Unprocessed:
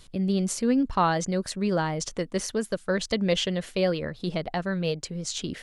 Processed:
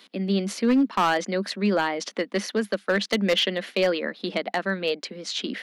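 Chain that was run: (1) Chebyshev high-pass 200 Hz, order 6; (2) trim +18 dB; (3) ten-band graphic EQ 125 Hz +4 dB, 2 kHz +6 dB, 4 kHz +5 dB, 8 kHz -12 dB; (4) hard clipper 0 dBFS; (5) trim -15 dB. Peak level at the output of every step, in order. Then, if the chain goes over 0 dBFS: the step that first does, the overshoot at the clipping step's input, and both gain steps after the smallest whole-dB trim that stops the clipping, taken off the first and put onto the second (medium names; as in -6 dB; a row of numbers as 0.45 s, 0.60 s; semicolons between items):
-10.5 dBFS, +7.5 dBFS, +8.5 dBFS, 0.0 dBFS, -15.0 dBFS; step 2, 8.5 dB; step 2 +9 dB, step 5 -6 dB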